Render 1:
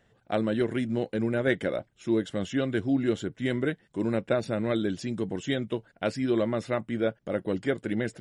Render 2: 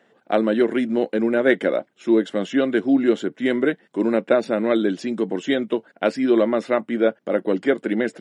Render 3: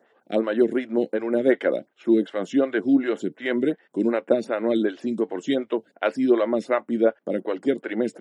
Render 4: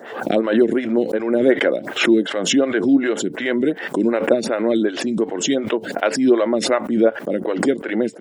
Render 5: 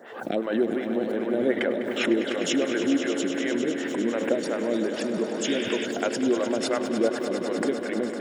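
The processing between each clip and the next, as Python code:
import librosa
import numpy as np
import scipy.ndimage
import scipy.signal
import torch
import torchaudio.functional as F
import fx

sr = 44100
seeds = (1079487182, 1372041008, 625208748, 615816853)

y1 = scipy.signal.sosfilt(scipy.signal.butter(4, 220.0, 'highpass', fs=sr, output='sos'), x)
y1 = fx.high_shelf(y1, sr, hz=4200.0, db=-10.0)
y1 = y1 * 10.0 ** (9.0 / 20.0)
y2 = fx.stagger_phaser(y1, sr, hz=2.7)
y3 = fx.pre_swell(y2, sr, db_per_s=71.0)
y3 = y3 * 10.0 ** (3.5 / 20.0)
y4 = fx.echo_swell(y3, sr, ms=101, loudest=5, wet_db=-12.0)
y4 = fx.spec_paint(y4, sr, seeds[0], shape='noise', start_s=5.44, length_s=0.42, low_hz=1400.0, high_hz=3700.0, level_db=-26.0)
y4 = y4 * 10.0 ** (-9.0 / 20.0)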